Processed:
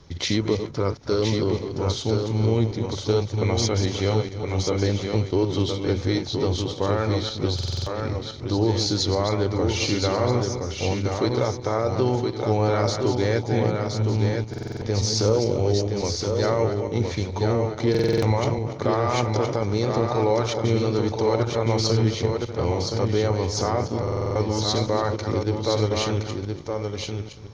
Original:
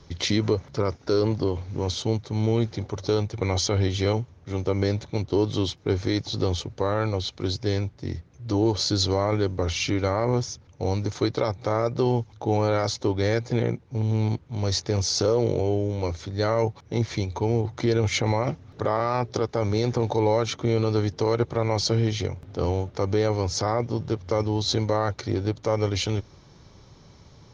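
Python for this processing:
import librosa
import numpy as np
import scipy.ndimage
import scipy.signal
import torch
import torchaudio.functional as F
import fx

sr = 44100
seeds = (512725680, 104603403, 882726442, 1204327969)

p1 = fx.reverse_delay_fb(x, sr, ms=143, feedback_pct=41, wet_db=-8.0)
p2 = p1 + fx.echo_single(p1, sr, ms=1018, db=-5.0, dry=0)
y = fx.buffer_glitch(p2, sr, at_s=(7.54, 14.49, 17.9, 24.03), block=2048, repeats=6)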